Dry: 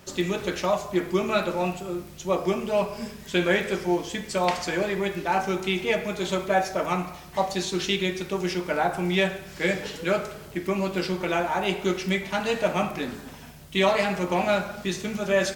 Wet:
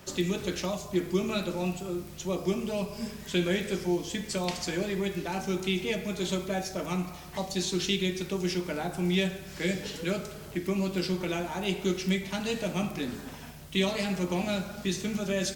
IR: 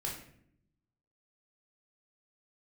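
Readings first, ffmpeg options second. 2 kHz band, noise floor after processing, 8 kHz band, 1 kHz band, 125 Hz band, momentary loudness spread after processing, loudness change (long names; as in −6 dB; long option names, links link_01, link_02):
−7.5 dB, −44 dBFS, 0.0 dB, −11.0 dB, −0.5 dB, 6 LU, −4.5 dB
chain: -filter_complex "[0:a]acrossover=split=360|3000[link_01][link_02][link_03];[link_02]acompressor=threshold=-42dB:ratio=2.5[link_04];[link_01][link_04][link_03]amix=inputs=3:normalize=0"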